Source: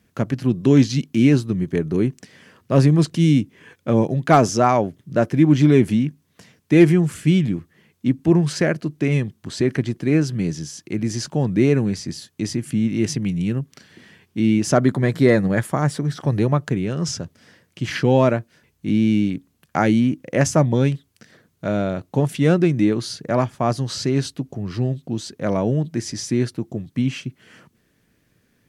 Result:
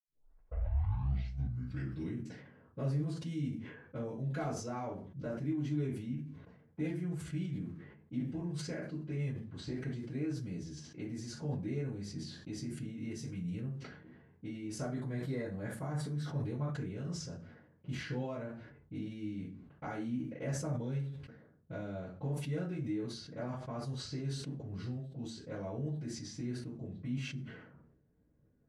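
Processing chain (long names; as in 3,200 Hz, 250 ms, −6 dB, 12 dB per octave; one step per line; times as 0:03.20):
turntable start at the beginning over 2.20 s
downward compressor 2.5 to 1, threshold −33 dBFS, peak gain reduction 17 dB
low-shelf EQ 130 Hz +9.5 dB
low-pass that shuts in the quiet parts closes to 720 Hz, open at −25.5 dBFS
gain on a spectral selection 0:01.55–0:02.01, 1,500–5,700 Hz +8 dB
convolution reverb RT60 0.35 s, pre-delay 68 ms
level that may fall only so fast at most 59 dB per second
level +8 dB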